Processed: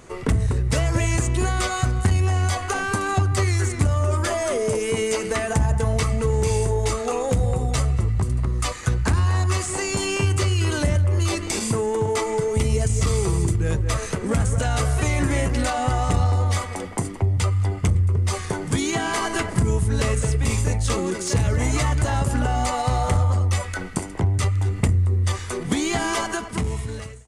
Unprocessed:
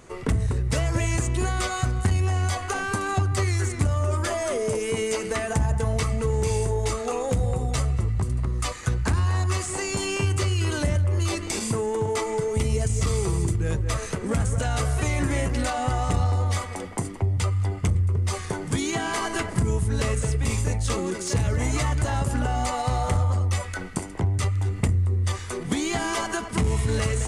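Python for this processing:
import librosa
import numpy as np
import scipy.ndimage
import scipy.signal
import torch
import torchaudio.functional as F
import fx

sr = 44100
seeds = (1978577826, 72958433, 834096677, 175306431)

y = fx.fade_out_tail(x, sr, length_s=1.13)
y = y * 10.0 ** (3.0 / 20.0)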